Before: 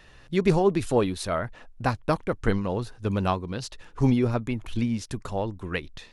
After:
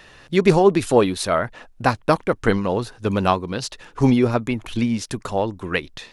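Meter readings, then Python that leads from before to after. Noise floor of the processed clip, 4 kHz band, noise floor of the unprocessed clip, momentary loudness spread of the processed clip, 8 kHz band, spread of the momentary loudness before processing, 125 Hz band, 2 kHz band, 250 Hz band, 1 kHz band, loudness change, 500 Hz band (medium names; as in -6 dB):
-51 dBFS, +8.0 dB, -52 dBFS, 10 LU, +8.0 dB, 10 LU, +3.0 dB, +8.0 dB, +5.5 dB, +8.0 dB, +6.0 dB, +7.0 dB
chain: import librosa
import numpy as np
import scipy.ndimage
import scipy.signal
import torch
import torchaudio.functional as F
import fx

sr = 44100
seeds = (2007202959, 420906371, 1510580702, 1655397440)

y = fx.low_shelf(x, sr, hz=120.0, db=-11.0)
y = y * librosa.db_to_amplitude(8.0)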